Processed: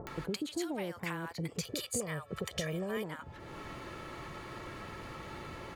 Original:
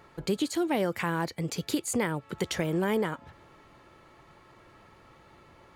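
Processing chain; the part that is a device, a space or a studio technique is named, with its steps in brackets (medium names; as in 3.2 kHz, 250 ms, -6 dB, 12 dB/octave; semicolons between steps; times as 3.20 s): 1.56–2.97 s: comb 1.7 ms, depth 67%; upward and downward compression (upward compressor, threshold -30 dBFS; compression 6:1, threshold -32 dBFS, peak gain reduction 9.5 dB); bands offset in time lows, highs 70 ms, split 810 Hz; trim -1 dB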